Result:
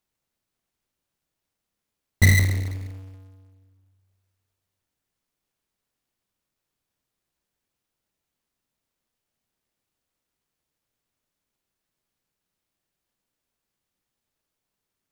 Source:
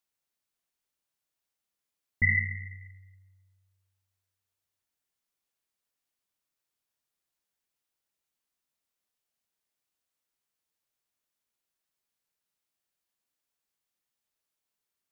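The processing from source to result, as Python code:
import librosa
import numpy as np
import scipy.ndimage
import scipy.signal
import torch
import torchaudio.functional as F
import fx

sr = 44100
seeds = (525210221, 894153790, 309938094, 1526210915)

y = fx.halfwave_hold(x, sr)
y = fx.low_shelf(y, sr, hz=410.0, db=10.0)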